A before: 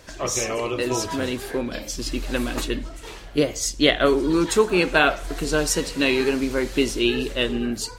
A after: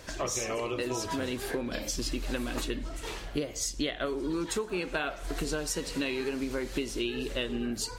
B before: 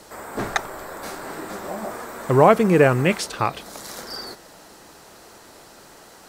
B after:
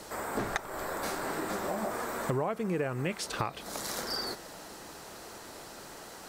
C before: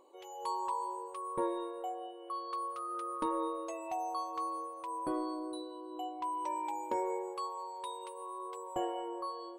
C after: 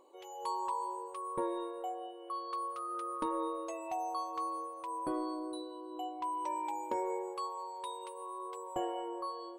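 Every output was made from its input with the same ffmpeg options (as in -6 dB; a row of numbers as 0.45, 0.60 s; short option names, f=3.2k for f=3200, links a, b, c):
-af "acompressor=threshold=-29dB:ratio=8"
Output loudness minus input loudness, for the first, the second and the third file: -10.5, -13.0, -0.5 LU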